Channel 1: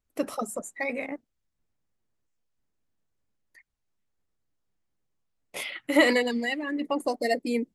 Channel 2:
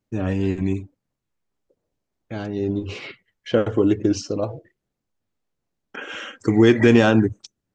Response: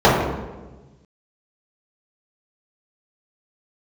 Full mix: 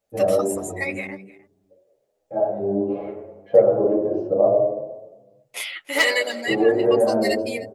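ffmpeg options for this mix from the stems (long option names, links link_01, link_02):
-filter_complex "[0:a]aeval=exprs='0.237*(abs(mod(val(0)/0.237+3,4)-2)-1)':channel_layout=same,volume=0.5dB,asplit=3[link_01][link_02][link_03];[link_02]volume=-21dB[link_04];[1:a]acompressor=threshold=-19dB:ratio=6,lowpass=frequency=620:width_type=q:width=4.9,lowshelf=frequency=170:gain=-4,volume=-3dB,asplit=2[link_05][link_06];[link_06]volume=-23dB[link_07];[link_03]apad=whole_len=341622[link_08];[link_05][link_08]sidechaincompress=threshold=-53dB:ratio=8:attack=16:release=1110[link_09];[2:a]atrim=start_sample=2205[link_10];[link_07][link_10]afir=irnorm=-1:irlink=0[link_11];[link_04]aecho=0:1:306:1[link_12];[link_01][link_09][link_11][link_12]amix=inputs=4:normalize=0,tiltshelf=frequency=630:gain=-9,asplit=2[link_13][link_14];[link_14]adelay=8.9,afreqshift=1.2[link_15];[link_13][link_15]amix=inputs=2:normalize=1"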